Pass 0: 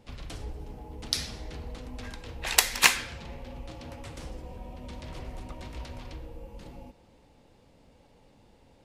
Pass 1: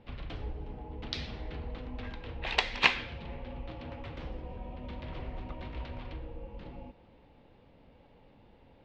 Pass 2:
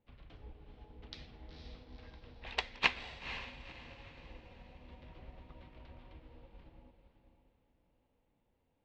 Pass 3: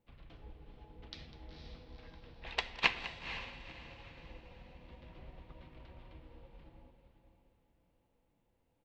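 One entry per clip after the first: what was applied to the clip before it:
low-pass 3.5 kHz 24 dB/octave; dynamic bell 1.5 kHz, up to -6 dB, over -49 dBFS, Q 1.4
echo that smears into a reverb 491 ms, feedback 47%, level -5.5 dB; upward expansion 1.5:1, over -51 dBFS; trim -5 dB
delay 201 ms -16 dB; simulated room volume 3100 m³, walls furnished, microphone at 0.74 m

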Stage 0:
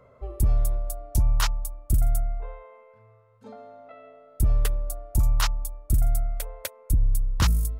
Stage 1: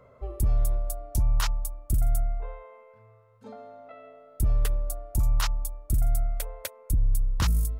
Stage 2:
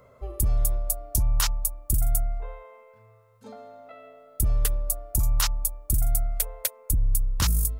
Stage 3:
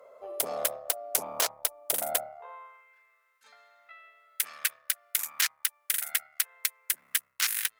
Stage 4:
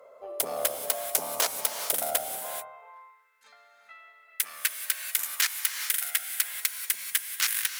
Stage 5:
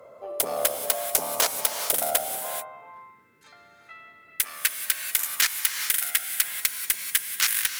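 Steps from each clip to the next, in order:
peak limiter -17.5 dBFS, peak gain reduction 4.5 dB
treble shelf 4.6 kHz +12 dB
Chebyshev shaper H 7 -12 dB, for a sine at -8 dBFS; high-pass sweep 570 Hz -> 1.8 kHz, 2.25–2.90 s
gated-style reverb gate 460 ms rising, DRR 6 dB; trim +1 dB
band noise 82–460 Hz -70 dBFS; in parallel at -10 dB: one-sided clip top -23.5 dBFS; on the sum: trim +1.5 dB

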